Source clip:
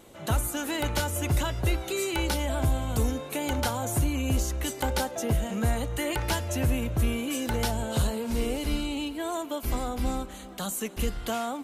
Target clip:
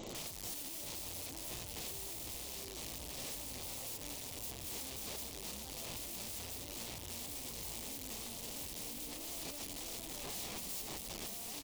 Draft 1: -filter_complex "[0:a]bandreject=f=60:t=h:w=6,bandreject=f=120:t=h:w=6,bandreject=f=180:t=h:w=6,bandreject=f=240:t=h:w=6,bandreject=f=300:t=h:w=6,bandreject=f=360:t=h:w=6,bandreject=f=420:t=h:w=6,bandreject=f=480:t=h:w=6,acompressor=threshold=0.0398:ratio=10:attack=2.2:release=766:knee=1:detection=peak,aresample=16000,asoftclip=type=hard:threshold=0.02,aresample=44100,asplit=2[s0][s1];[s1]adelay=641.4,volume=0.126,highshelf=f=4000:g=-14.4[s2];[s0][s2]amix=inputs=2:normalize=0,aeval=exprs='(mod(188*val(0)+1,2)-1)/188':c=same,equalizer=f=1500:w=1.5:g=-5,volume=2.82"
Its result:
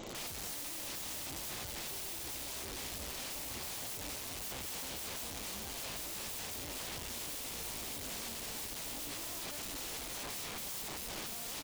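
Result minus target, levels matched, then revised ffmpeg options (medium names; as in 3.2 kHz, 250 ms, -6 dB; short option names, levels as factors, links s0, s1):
2 kHz band +3.5 dB; hard clipper: distortion -5 dB
-filter_complex "[0:a]bandreject=f=60:t=h:w=6,bandreject=f=120:t=h:w=6,bandreject=f=180:t=h:w=6,bandreject=f=240:t=h:w=6,bandreject=f=300:t=h:w=6,bandreject=f=360:t=h:w=6,bandreject=f=420:t=h:w=6,bandreject=f=480:t=h:w=6,acompressor=threshold=0.0398:ratio=10:attack=2.2:release=766:knee=1:detection=peak,aresample=16000,asoftclip=type=hard:threshold=0.01,aresample=44100,asplit=2[s0][s1];[s1]adelay=641.4,volume=0.126,highshelf=f=4000:g=-14.4[s2];[s0][s2]amix=inputs=2:normalize=0,aeval=exprs='(mod(188*val(0)+1,2)-1)/188':c=same,equalizer=f=1500:w=1.5:g=-13,volume=2.82"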